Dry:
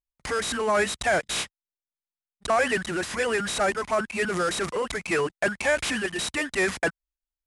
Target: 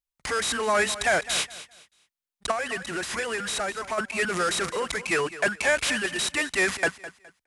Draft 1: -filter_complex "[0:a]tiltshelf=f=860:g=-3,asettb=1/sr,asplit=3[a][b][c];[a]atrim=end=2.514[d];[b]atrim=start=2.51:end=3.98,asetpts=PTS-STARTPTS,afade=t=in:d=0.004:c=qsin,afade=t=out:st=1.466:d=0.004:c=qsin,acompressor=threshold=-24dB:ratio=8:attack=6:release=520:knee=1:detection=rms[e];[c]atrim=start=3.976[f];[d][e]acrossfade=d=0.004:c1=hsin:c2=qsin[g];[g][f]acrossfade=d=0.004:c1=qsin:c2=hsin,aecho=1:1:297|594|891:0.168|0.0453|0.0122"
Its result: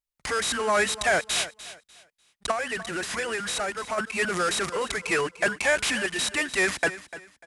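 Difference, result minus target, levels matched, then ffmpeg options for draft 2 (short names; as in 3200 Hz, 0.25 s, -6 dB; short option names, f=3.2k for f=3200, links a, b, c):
echo 89 ms late
-filter_complex "[0:a]tiltshelf=f=860:g=-3,asettb=1/sr,asplit=3[a][b][c];[a]atrim=end=2.514[d];[b]atrim=start=2.51:end=3.98,asetpts=PTS-STARTPTS,afade=t=in:d=0.004:c=qsin,afade=t=out:st=1.466:d=0.004:c=qsin,acompressor=threshold=-24dB:ratio=8:attack=6:release=520:knee=1:detection=rms[e];[c]atrim=start=3.976[f];[d][e]acrossfade=d=0.004:c1=hsin:c2=qsin[g];[g][f]acrossfade=d=0.004:c1=qsin:c2=hsin,aecho=1:1:208|416|624:0.168|0.0453|0.0122"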